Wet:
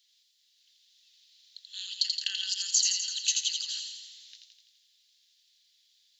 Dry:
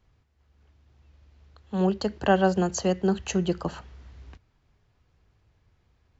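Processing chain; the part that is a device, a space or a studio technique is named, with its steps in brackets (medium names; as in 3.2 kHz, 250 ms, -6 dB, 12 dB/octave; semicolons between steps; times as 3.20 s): over-bright horn tweeter (resonant high shelf 2.9 kHz +8.5 dB, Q 3; peak limiter -15.5 dBFS, peak gain reduction 8 dB); steep high-pass 1.9 kHz 48 dB/octave; feedback echo behind a high-pass 84 ms, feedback 63%, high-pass 2.6 kHz, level -3 dB; trim +2.5 dB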